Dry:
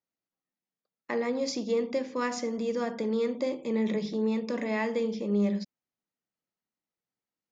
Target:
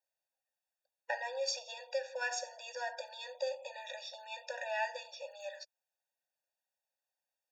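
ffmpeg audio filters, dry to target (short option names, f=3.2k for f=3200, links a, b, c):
-filter_complex "[0:a]acrossover=split=120|1000|1300[a][b][c][d];[b]acompressor=threshold=-36dB:ratio=6[e];[a][e][c][d]amix=inputs=4:normalize=0,afftfilt=real='re*eq(mod(floor(b*sr/1024/480),2),1)':imag='im*eq(mod(floor(b*sr/1024/480),2),1)':win_size=1024:overlap=0.75,volume=3dB"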